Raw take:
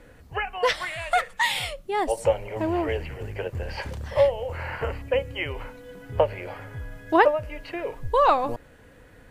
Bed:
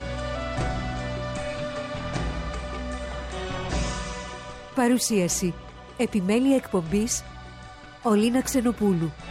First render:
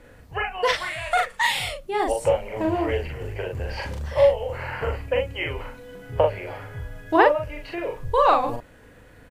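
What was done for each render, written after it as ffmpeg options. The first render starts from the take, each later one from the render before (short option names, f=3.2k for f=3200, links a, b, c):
-filter_complex "[0:a]asplit=2[a][b];[b]adelay=41,volume=-3dB[c];[a][c]amix=inputs=2:normalize=0"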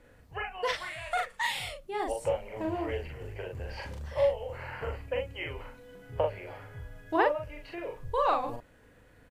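-af "volume=-9dB"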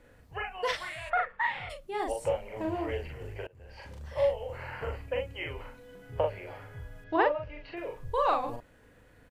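-filter_complex "[0:a]asplit=3[a][b][c];[a]afade=t=out:st=1.09:d=0.02[d];[b]lowpass=f=1.6k:t=q:w=1.6,afade=t=in:st=1.09:d=0.02,afade=t=out:st=1.69:d=0.02[e];[c]afade=t=in:st=1.69:d=0.02[f];[d][e][f]amix=inputs=3:normalize=0,asettb=1/sr,asplit=3[g][h][i];[g]atrim=end=7.044[j];[h]atrim=start=7.04:end=7.77,asetpts=PTS-STARTPTS,afade=t=in:d=0.004:c=qsin,afade=t=out:st=0.726:d=0.004:c=qsin,lowpass=f=4.8k:w=0.5412,lowpass=f=4.8k:w=1.3066[k];[i]atrim=start=7.766[l];[j][k]acrossfade=d=0.004:c1=hsin:c2=qsin[m];[m][l]acrossfade=d=0.004:c1=qsin:c2=hsin,asplit=2[n][o];[n]atrim=end=3.47,asetpts=PTS-STARTPTS,afade=t=out:st=3.466:d=0.004:c=hsin:silence=0.0668344[p];[o]atrim=start=3.47,asetpts=PTS-STARTPTS,afade=t=in:d=0.86:silence=0.0668344[q];[p][q]concat=n=2:v=0:a=1"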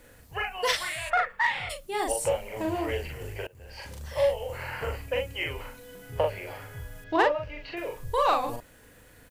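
-filter_complex "[0:a]asplit=2[a][b];[b]asoftclip=type=tanh:threshold=-24.5dB,volume=-7.5dB[c];[a][c]amix=inputs=2:normalize=0,crystalizer=i=3:c=0"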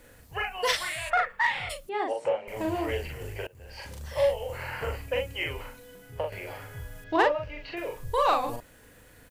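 -filter_complex "[0:a]asettb=1/sr,asplit=3[a][b][c];[a]atrim=end=1.894[d];[b]atrim=start=1.89:end=2.48,asetpts=PTS-STARTPTS,afade=t=in:d=0.004:c=qsin,afade=t=out:st=0.586:d=0.004:c=qsin,highpass=250,lowpass=2.4k[e];[c]atrim=start=2.476[f];[d][e]acrossfade=d=0.004:c1=hsin:c2=qsin[g];[g][f]acrossfade=d=0.004:c1=qsin:c2=hsin,asplit=2[h][i];[h]atrim=end=6.32,asetpts=PTS-STARTPTS,afade=t=out:st=5.56:d=0.76:silence=0.421697[j];[i]atrim=start=6.32,asetpts=PTS-STARTPTS,afade=t=in:d=0.004:c=hsin:silence=0.421697[k];[j][k]concat=n=2:v=0:a=1"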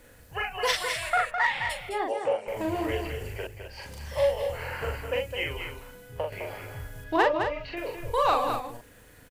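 -af "aecho=1:1:209:0.447"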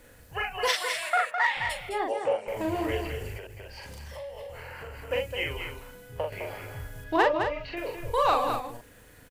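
-filter_complex "[0:a]asettb=1/sr,asplit=3[a][b][c];[a]atrim=end=0.684[d];[b]atrim=start=0.68:end=1.57,asetpts=PTS-STARTPTS,afade=t=in:d=0.004:c=qsin,afade=t=out:st=0.886:d=0.004:c=qsin,highpass=350[e];[c]atrim=start=1.566[f];[d][e]acrossfade=d=0.004:c1=hsin:c2=qsin[g];[g][f]acrossfade=d=0.004:c1=qsin:c2=hsin,asettb=1/sr,asplit=3[h][i][j];[h]atrim=end=3.374[k];[i]atrim=start=3.37:end=5.11,asetpts=PTS-STARTPTS,afade=t=in:d=0.004:c=qsin,afade=t=out:st=1.736:d=0.004:c=qsin,acompressor=threshold=-38dB:ratio=6:attack=3.2:release=140:knee=1:detection=peak[l];[j]atrim=start=5.106[m];[k][l]acrossfade=d=0.004:c1=hsin:c2=qsin[n];[n][m]acrossfade=d=0.004:c1=qsin:c2=hsin"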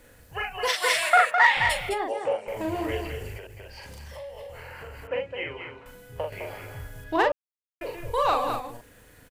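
-filter_complex "[0:a]asplit=3[a][b][c];[a]afade=t=out:st=0.82:d=0.02[d];[b]acontrast=89,afade=t=in:st=0.82:d=0.02,afade=t=out:st=1.93:d=0.02[e];[c]afade=t=in:st=1.93:d=0.02[f];[d][e][f]amix=inputs=3:normalize=0,asettb=1/sr,asplit=3[g][h][i];[g]atrim=end=5.074[j];[h]atrim=start=5.07:end=5.86,asetpts=PTS-STARTPTS,afade=t=in:d=0.004:c=qsin,afade=t=out:st=0.786:d=0.004:c=qsin,highpass=140,lowpass=2.4k[k];[i]atrim=start=5.856[l];[j][k]acrossfade=d=0.004:c1=hsin:c2=qsin[m];[m][l]acrossfade=d=0.004:c1=qsin:c2=hsin,asplit=3[n][o][p];[n]atrim=end=7.32,asetpts=PTS-STARTPTS,afade=t=out:st=7.316:d=0.004:c=hsin[q];[o]atrim=start=7.32:end=7.81,asetpts=PTS-STARTPTS,volume=0[r];[p]atrim=start=7.81,asetpts=PTS-STARTPTS,afade=t=in:d=0.004:c=hsin[s];[q][r][s]concat=n=3:v=0:a=1"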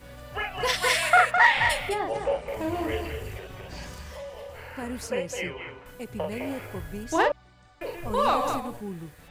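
-filter_complex "[1:a]volume=-14dB[a];[0:a][a]amix=inputs=2:normalize=0"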